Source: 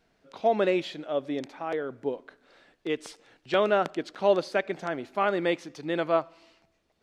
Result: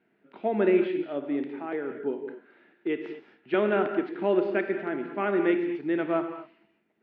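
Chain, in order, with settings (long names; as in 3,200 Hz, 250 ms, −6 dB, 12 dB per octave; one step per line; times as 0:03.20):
loudspeaker in its box 210–2,500 Hz, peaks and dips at 210 Hz +7 dB, 360 Hz +8 dB, 530 Hz −9 dB, 750 Hz −4 dB, 1,100 Hz −8 dB
reverb whose tail is shaped and stops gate 270 ms flat, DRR 5.5 dB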